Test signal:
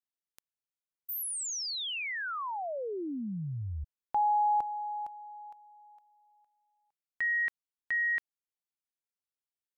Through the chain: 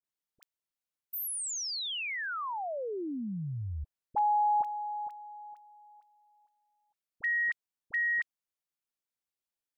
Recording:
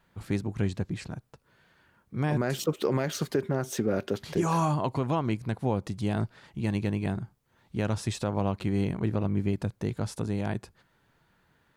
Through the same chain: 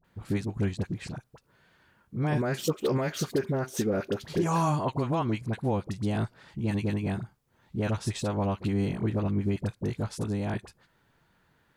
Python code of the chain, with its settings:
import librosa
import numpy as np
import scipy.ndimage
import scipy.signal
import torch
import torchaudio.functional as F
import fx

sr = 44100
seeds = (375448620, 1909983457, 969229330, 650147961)

y = fx.dispersion(x, sr, late='highs', ms=44.0, hz=980.0)